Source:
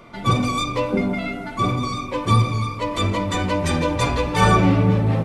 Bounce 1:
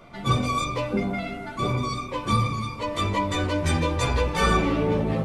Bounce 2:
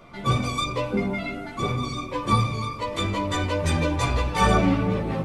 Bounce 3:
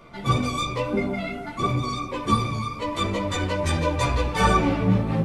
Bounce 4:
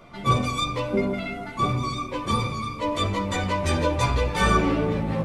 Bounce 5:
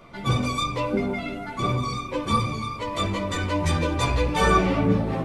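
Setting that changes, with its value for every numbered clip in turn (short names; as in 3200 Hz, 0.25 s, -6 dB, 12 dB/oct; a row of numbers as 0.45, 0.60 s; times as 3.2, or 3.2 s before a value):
chorus, rate: 0.21, 0.52, 1.9, 0.36, 0.79 Hz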